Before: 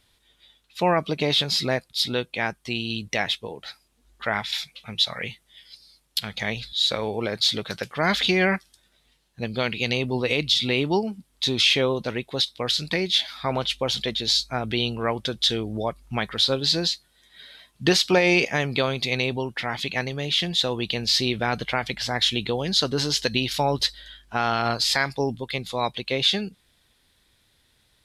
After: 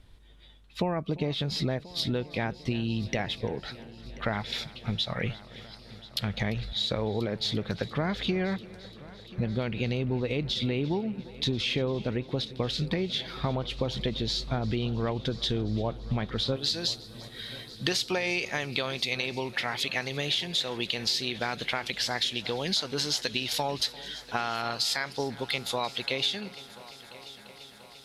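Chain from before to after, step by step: tilt EQ -3 dB/octave, from 16.55 s +1.5 dB/octave; compression 6:1, threshold -29 dBFS, peak gain reduction 15.5 dB; multi-head delay 345 ms, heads first and third, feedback 71%, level -20.5 dB; trim +2.5 dB

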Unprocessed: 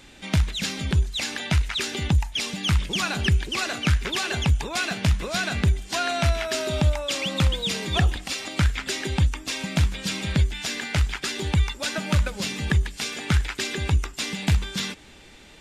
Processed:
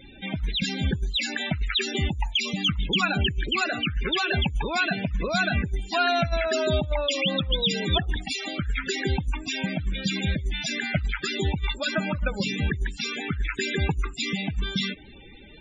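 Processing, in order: loudest bins only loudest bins 32; compressor with a negative ratio -23 dBFS, ratio -0.5; trim +1 dB

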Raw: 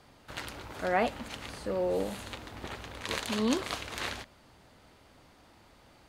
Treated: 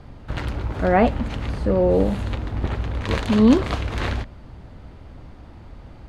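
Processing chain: RIAA curve playback; trim +8.5 dB

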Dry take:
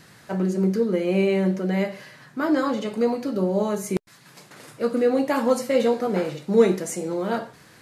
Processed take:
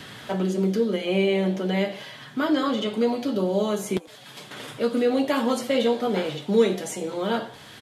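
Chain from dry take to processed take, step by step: peaking EQ 3.3 kHz +14 dB 0.41 oct; comb of notches 170 Hz; frequency-shifting echo 88 ms, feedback 56%, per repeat +120 Hz, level -24 dB; three bands compressed up and down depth 40%

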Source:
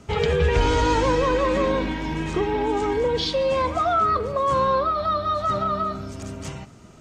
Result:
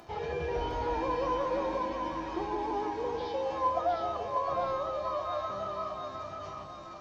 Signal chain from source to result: one-bit delta coder 32 kbps, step -34.5 dBFS; peaking EQ 730 Hz +14.5 dB 0.96 oct; upward compressor, threshold -35 dBFS; feedback comb 340 Hz, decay 0.48 s, harmonics odd, mix 90%; two-band feedback delay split 710 Hz, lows 165 ms, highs 708 ms, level -4 dB

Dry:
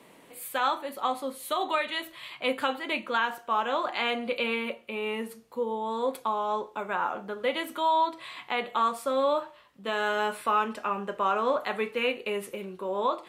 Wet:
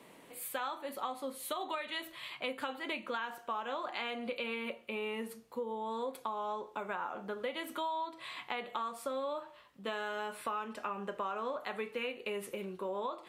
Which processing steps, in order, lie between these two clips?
compression, threshold -32 dBFS, peak gain reduction 11 dB; trim -2.5 dB

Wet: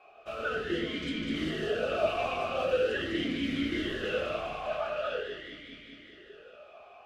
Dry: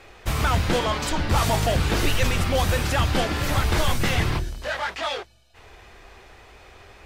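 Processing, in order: echo whose repeats swap between lows and highs 101 ms, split 1.5 kHz, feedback 85%, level -2.5 dB; simulated room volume 250 m³, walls furnished, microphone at 1.4 m; talking filter a-i 0.43 Hz

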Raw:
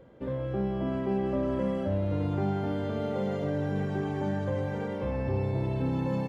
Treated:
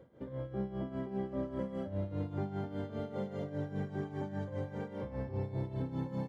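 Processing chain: high-pass 67 Hz; bass shelf 240 Hz +3.5 dB; band-stop 2.6 kHz, Q 8.1; in parallel at -3 dB: peak limiter -31.5 dBFS, peak gain reduction 14.5 dB; on the sum: tremolo 5 Hz, depth 72%; trim -8.5 dB

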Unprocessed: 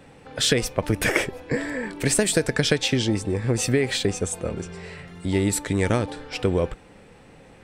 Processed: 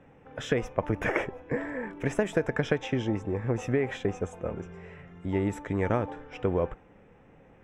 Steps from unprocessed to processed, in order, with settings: boxcar filter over 10 samples; dynamic bell 900 Hz, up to +6 dB, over -37 dBFS, Q 0.87; trim -6.5 dB

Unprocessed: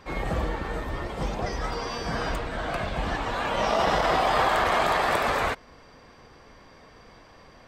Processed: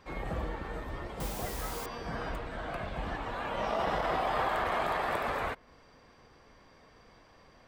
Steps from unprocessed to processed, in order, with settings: dynamic bell 6.1 kHz, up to -8 dB, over -48 dBFS, Q 0.78; 1.20–1.86 s: word length cut 6-bit, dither triangular; trim -7.5 dB

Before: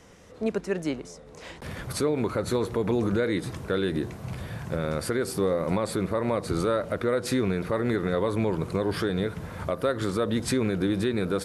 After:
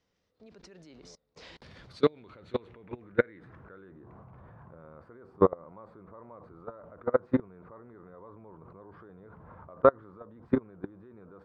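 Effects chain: level held to a coarse grid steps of 23 dB; low-pass sweep 4.6 kHz -> 1.1 kHz, 1.80–4.10 s; upward expansion 1.5:1, over -54 dBFS; trim +6.5 dB

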